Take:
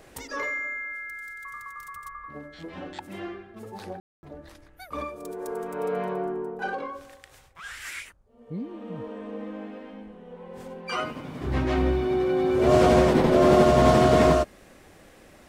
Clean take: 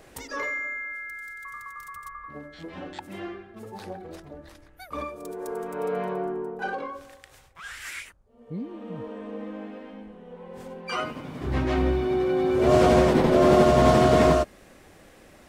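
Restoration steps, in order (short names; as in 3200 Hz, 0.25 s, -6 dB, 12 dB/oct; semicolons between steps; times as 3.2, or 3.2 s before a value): room tone fill 4–4.23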